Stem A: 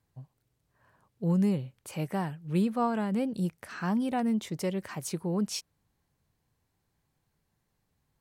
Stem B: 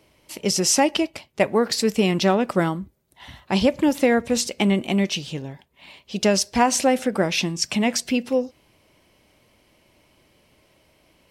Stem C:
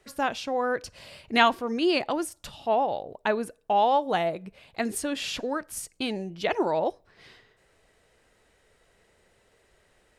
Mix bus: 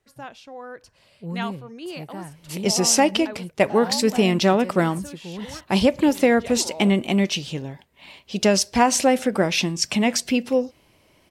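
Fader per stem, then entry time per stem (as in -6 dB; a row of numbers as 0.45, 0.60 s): -5.0, +1.0, -11.0 dB; 0.00, 2.20, 0.00 s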